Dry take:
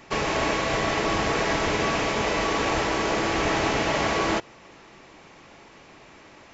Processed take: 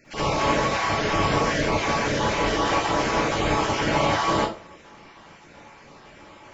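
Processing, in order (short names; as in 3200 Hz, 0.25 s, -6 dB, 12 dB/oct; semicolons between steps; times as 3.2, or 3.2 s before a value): random spectral dropouts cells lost 26%; reverb RT60 0.40 s, pre-delay 47 ms, DRR -9.5 dB; gain -7 dB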